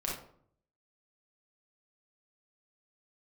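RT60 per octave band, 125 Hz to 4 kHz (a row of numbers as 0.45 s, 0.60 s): 0.85 s, 0.75 s, 0.65 s, 0.55 s, 0.40 s, 0.35 s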